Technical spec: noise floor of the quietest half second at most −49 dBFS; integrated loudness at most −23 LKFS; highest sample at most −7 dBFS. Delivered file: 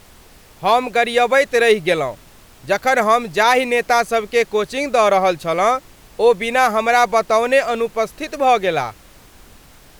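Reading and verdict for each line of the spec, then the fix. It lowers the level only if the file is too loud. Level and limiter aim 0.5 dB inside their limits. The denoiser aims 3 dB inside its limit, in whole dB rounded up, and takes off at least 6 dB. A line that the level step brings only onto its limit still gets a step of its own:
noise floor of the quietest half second −45 dBFS: out of spec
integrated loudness −16.5 LKFS: out of spec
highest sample −3.5 dBFS: out of spec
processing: level −7 dB

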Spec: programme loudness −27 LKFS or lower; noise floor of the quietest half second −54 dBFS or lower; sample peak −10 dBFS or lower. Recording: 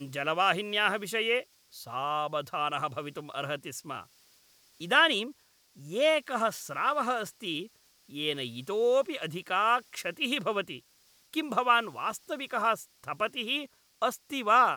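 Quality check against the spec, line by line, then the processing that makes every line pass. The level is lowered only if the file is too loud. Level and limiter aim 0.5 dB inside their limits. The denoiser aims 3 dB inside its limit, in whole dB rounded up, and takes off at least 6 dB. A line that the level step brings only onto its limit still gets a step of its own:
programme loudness −29.5 LKFS: in spec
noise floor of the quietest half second −64 dBFS: in spec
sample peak −9.0 dBFS: out of spec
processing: brickwall limiter −10.5 dBFS

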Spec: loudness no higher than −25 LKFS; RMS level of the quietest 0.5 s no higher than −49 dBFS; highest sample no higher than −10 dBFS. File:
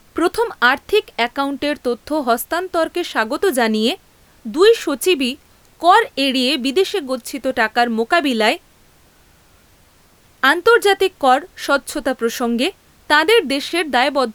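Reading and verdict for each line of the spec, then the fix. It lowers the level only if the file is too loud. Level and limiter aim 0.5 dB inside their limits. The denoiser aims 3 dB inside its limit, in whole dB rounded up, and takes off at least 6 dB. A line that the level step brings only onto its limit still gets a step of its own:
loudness −17.0 LKFS: out of spec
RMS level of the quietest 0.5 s −52 dBFS: in spec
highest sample −1.5 dBFS: out of spec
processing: level −8.5 dB
brickwall limiter −10.5 dBFS

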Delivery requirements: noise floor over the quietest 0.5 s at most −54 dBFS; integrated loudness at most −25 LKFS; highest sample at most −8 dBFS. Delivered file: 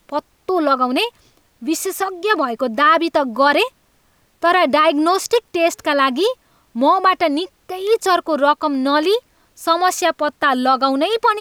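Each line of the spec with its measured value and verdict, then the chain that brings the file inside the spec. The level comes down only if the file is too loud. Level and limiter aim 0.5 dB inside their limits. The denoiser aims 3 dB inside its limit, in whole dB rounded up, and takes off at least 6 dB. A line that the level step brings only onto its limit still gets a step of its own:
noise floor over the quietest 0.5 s −58 dBFS: in spec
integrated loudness −17.0 LKFS: out of spec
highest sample −4.0 dBFS: out of spec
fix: level −8.5 dB

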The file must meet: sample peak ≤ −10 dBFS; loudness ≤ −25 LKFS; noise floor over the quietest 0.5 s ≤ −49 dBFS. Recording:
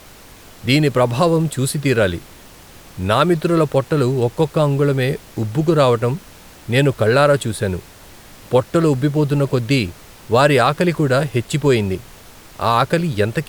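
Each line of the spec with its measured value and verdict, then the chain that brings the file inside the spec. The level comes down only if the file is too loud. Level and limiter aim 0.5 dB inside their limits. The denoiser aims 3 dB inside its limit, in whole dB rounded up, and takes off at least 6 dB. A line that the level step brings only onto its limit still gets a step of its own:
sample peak −2.5 dBFS: out of spec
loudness −17.5 LKFS: out of spec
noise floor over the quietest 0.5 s −42 dBFS: out of spec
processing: level −8 dB

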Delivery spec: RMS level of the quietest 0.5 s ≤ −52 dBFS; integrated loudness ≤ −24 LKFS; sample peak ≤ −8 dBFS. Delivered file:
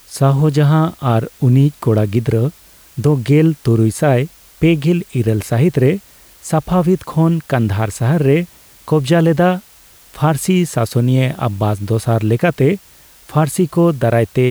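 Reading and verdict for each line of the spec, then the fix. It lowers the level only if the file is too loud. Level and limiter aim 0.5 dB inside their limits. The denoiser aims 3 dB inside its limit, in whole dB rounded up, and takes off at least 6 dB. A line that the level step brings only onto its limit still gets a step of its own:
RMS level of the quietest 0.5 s −45 dBFS: out of spec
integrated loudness −15.5 LKFS: out of spec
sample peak −3.5 dBFS: out of spec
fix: level −9 dB

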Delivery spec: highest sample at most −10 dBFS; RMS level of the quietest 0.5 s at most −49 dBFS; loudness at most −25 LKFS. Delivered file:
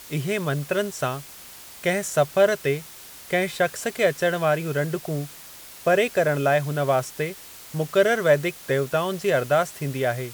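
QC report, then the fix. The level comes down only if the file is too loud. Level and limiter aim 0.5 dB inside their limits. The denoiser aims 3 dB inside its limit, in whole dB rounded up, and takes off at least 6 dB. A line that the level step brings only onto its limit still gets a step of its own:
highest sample −7.0 dBFS: out of spec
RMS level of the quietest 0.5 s −43 dBFS: out of spec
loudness −23.5 LKFS: out of spec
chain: broadband denoise 7 dB, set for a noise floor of −43 dBFS
level −2 dB
brickwall limiter −10.5 dBFS

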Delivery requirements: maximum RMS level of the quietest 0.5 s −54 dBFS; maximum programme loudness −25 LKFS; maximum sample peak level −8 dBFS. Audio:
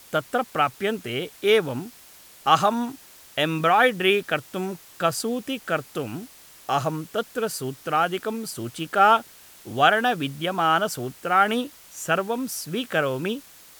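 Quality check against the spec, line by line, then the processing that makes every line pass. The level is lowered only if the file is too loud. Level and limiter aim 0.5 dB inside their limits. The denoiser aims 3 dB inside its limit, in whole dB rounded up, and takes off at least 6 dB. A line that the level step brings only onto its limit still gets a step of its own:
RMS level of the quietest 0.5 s −49 dBFS: out of spec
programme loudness −23.5 LKFS: out of spec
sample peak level −4.5 dBFS: out of spec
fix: broadband denoise 6 dB, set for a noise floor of −49 dBFS
level −2 dB
brickwall limiter −8.5 dBFS

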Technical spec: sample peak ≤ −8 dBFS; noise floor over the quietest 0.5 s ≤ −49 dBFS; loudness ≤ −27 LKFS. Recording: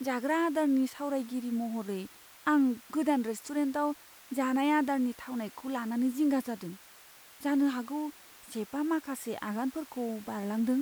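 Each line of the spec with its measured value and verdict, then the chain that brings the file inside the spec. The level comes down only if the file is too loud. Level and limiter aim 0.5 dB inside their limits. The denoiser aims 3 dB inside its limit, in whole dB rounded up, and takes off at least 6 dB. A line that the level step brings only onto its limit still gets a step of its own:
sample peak −16.0 dBFS: in spec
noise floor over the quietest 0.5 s −55 dBFS: in spec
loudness −31.5 LKFS: in spec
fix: no processing needed

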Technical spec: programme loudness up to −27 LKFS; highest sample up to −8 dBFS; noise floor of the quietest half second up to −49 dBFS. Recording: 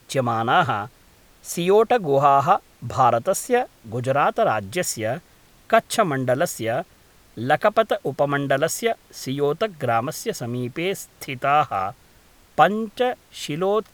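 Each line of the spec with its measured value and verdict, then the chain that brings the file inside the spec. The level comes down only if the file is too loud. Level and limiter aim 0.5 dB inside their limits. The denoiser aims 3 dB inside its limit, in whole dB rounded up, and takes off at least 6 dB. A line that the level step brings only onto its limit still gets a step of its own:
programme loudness −22.0 LKFS: out of spec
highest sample −2.5 dBFS: out of spec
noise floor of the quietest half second −53 dBFS: in spec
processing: level −5.5 dB
brickwall limiter −8.5 dBFS

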